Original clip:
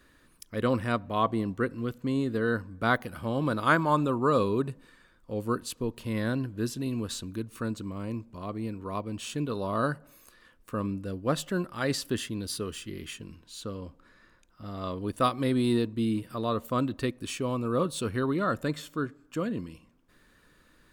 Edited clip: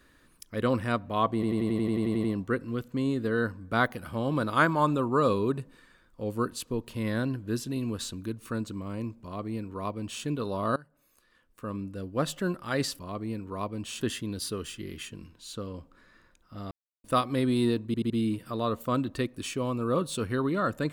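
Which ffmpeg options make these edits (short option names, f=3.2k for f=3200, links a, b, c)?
-filter_complex "[0:a]asplit=19[a][b][c][d][e][f][g][h][i][j][k][l][m][n][o][p][q][r][s];[a]atrim=end=1.432[t];[b]atrim=start=1.338:end=1.432[u];[c]atrim=start=1.338:end=1.432[v];[d]atrim=start=1.338:end=1.432[w];[e]atrim=start=1.338:end=1.432[x];[f]atrim=start=1.338:end=1.432[y];[g]atrim=start=1.338:end=1.432[z];[h]atrim=start=1.338:end=1.432[aa];[i]atrim=start=1.338:end=1.432[ab];[j]atrim=start=1.338:end=1.432[ac];[k]atrim=start=1.338:end=9.86,asetpts=PTS-STARTPTS,afade=t=out:st=8.518:d=0.004:c=hsin:silence=0.0841395[ad];[l]atrim=start=9.86:end=12.092,asetpts=PTS-STARTPTS,afade=t=in:d=1.62:silence=0.0841395[ae];[m]atrim=start=8.328:end=9.352[af];[n]atrim=start=12.088:end=14.79,asetpts=PTS-STARTPTS,afade=t=out:st=2.698:d=0.004:c=hsin[ag];[o]atrim=start=14.79:end=15.12,asetpts=PTS-STARTPTS,volume=0[ah];[p]atrim=start=15.12:end=16.022,asetpts=PTS-STARTPTS,afade=t=in:d=0.004:c=hsin[ai];[q]atrim=start=15.938:end=16.022[aj];[r]atrim=start=15.938:end=16.022[ak];[s]atrim=start=15.938[al];[t][u]acrossfade=d=0.004:c1=hsin:c2=hsin[am];[am][v]acrossfade=d=0.004:c1=hsin:c2=hsin[an];[an][w]acrossfade=d=0.004:c1=hsin:c2=hsin[ao];[ao][x]acrossfade=d=0.004:c1=hsin:c2=hsin[ap];[ap][y]acrossfade=d=0.004:c1=hsin:c2=hsin[aq];[aq][z]acrossfade=d=0.004:c1=hsin:c2=hsin[ar];[ar][aa]acrossfade=d=0.004:c1=hsin:c2=hsin[as];[as][ab]acrossfade=d=0.004:c1=hsin:c2=hsin[at];[at][ac]acrossfade=d=0.004:c1=hsin:c2=hsin[au];[ad][ae]concat=n=2:v=0:a=1[av];[au][av]acrossfade=d=0.004:c1=hsin:c2=hsin[aw];[aw][af]acrossfade=d=0.004:c1=hsin:c2=hsin[ax];[ag][ah][ai]concat=n=3:v=0:a=1[ay];[ax][ay]acrossfade=d=0.004:c1=hsin:c2=hsin[az];[az][aj]acrossfade=d=0.004:c1=hsin:c2=hsin[ba];[ba][ak]acrossfade=d=0.004:c1=hsin:c2=hsin[bb];[bb][al]acrossfade=d=0.004:c1=hsin:c2=hsin"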